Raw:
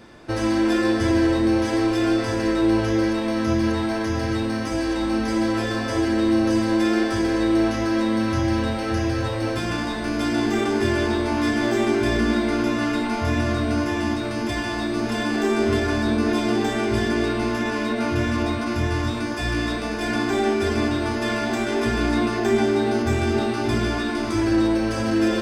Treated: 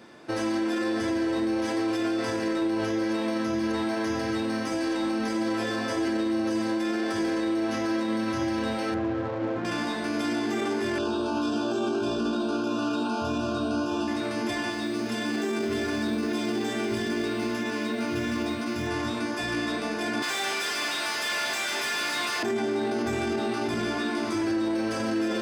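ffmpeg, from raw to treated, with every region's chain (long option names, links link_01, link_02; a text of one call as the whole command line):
ffmpeg -i in.wav -filter_complex "[0:a]asettb=1/sr,asplit=3[link_01][link_02][link_03];[link_01]atrim=end=8.944[link_04];[link_02]atrim=start=8.94:end=9.65,asetpts=PTS-STARTPTS,afade=type=in:duration=0.004:curve=qsin,afade=type=out:start_time=0.706:duration=0.004:curve=qsin,lowpass=2000,acrusher=bits=4:mix=0:aa=0.5,adynamicsmooth=sensitivity=1:basefreq=990[link_05];[link_03]atrim=start=9.646[link_06];[link_04][link_05]acrossfade=duration=0.004:curve1=hsin:curve2=qsin[link_07];[link_07][link_06]acrossfade=duration=0.004:curve1=qsin:curve2=hsin,asettb=1/sr,asplit=3[link_08][link_09][link_10];[link_08]atrim=end=10.984[link_11];[link_09]atrim=start=10.98:end=14.08,asetpts=PTS-STARTPTS,afade=type=in:duration=0.004:curve=qsin,afade=type=out:start_time=3.096:duration=0.004:curve=qsin,acrossover=split=7500[link_12][link_13];[link_13]acompressor=threshold=-60dB:ratio=4:attack=1:release=60[link_14];[link_12][link_14]amix=inputs=2:normalize=0,asuperstop=centerf=2000:order=12:qfactor=2.4[link_15];[link_10]atrim=start=14.076[link_16];[link_11][link_15]acrossfade=duration=0.004:curve1=hsin:curve2=qsin[link_17];[link_17][link_16]acrossfade=duration=0.004:curve1=qsin:curve2=hsin,asettb=1/sr,asplit=3[link_18][link_19][link_20];[link_18]atrim=end=14.704[link_21];[link_19]atrim=start=14.7:end=18.87,asetpts=PTS-STARTPTS,afade=type=in:duration=0.004:curve=qsin,afade=type=out:start_time=4.166:duration=0.004:curve=qsin,equalizer=frequency=870:width_type=o:width=1.9:gain=-5.5,acrusher=bits=9:mode=log:mix=0:aa=0.000001[link_22];[link_20]atrim=start=18.866[link_23];[link_21][link_22]acrossfade=duration=0.004:curve1=hsin:curve2=qsin[link_24];[link_24][link_23]acrossfade=duration=0.004:curve1=qsin:curve2=hsin,asettb=1/sr,asplit=3[link_25][link_26][link_27];[link_25]atrim=end=20.224[link_28];[link_26]atrim=start=20.22:end=22.43,asetpts=PTS-STARTPTS,afade=type=in:duration=0.004:curve=qsin,afade=type=out:start_time=2.206:duration=0.004:curve=qsin,aderivative,asplit=2[link_29][link_30];[link_30]highpass=frequency=720:poles=1,volume=32dB,asoftclip=type=tanh:threshold=-15dB[link_31];[link_29][link_31]amix=inputs=2:normalize=0,lowpass=frequency=2400:poles=1,volume=-6dB[link_32];[link_27]atrim=start=22.426[link_33];[link_28][link_32]acrossfade=duration=0.004:curve1=hsin:curve2=qsin[link_34];[link_34][link_33]acrossfade=duration=0.004:curve1=qsin:curve2=hsin,highpass=170,alimiter=limit=-17.5dB:level=0:latency=1:release=18,volume=-2.5dB" out.wav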